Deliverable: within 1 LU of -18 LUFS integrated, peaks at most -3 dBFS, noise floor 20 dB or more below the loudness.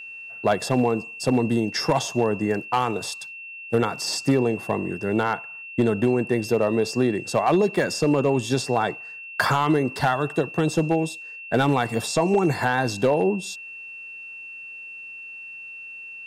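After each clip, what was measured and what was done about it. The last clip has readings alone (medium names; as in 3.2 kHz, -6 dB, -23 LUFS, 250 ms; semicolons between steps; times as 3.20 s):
clipped samples 0.6%; clipping level -12.0 dBFS; steady tone 2.7 kHz; tone level -36 dBFS; loudness -23.0 LUFS; peak level -12.0 dBFS; loudness target -18.0 LUFS
-> clip repair -12 dBFS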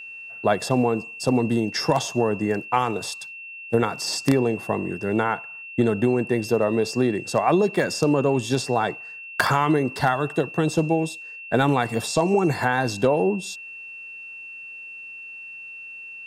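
clipped samples 0.0%; steady tone 2.7 kHz; tone level -36 dBFS
-> band-stop 2.7 kHz, Q 30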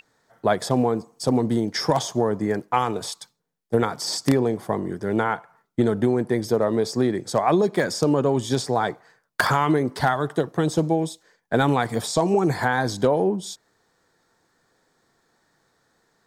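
steady tone not found; loudness -23.0 LUFS; peak level -3.0 dBFS; loudness target -18.0 LUFS
-> trim +5 dB; peak limiter -3 dBFS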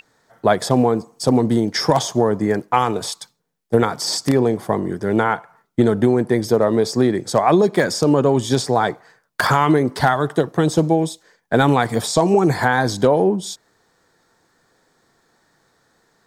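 loudness -18.0 LUFS; peak level -3.0 dBFS; noise floor -64 dBFS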